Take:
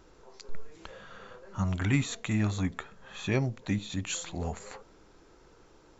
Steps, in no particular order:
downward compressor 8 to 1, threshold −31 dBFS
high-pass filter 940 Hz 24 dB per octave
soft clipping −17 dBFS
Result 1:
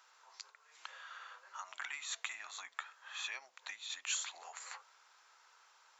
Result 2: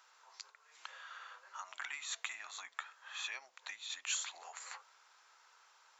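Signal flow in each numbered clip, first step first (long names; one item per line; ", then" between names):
downward compressor, then high-pass filter, then soft clipping
downward compressor, then soft clipping, then high-pass filter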